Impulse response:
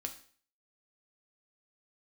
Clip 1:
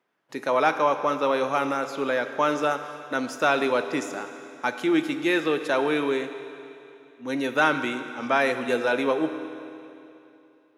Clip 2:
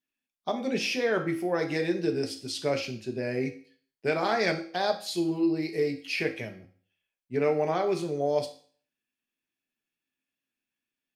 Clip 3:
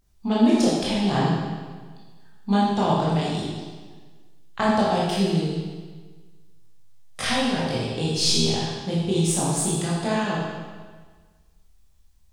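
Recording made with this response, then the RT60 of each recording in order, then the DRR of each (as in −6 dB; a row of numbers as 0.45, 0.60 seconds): 2; 2.8, 0.50, 1.5 seconds; 8.0, 4.0, −7.0 decibels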